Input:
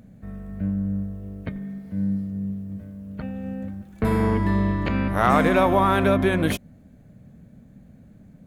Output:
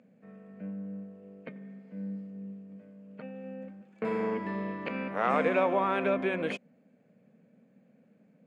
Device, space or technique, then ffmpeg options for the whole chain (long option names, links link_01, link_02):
television speaker: -af "highpass=frequency=200:width=0.5412,highpass=frequency=200:width=1.3066,equalizer=frequency=310:width_type=q:width=4:gain=-5,equalizer=frequency=490:width_type=q:width=4:gain=8,equalizer=frequency=2500:width_type=q:width=4:gain=7,equalizer=frequency=3800:width_type=q:width=4:gain=-7,equalizer=frequency=5800:width_type=q:width=4:gain=-9,lowpass=frequency=6600:width=0.5412,lowpass=frequency=6600:width=1.3066,volume=-9dB"